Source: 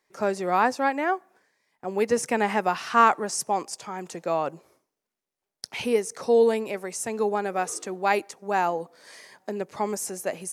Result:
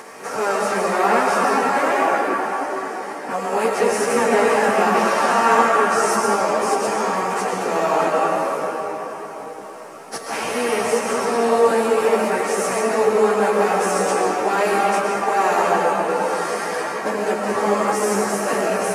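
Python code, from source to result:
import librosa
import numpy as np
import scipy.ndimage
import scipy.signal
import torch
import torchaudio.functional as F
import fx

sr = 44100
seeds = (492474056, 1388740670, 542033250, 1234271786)

y = fx.bin_compress(x, sr, power=0.4)
y = fx.rev_freeverb(y, sr, rt60_s=2.6, hf_ratio=0.5, predelay_ms=30, drr_db=-3.5)
y = fx.stretch_vocoder_free(y, sr, factor=1.8)
y = y * librosa.db_to_amplitude(-1.0)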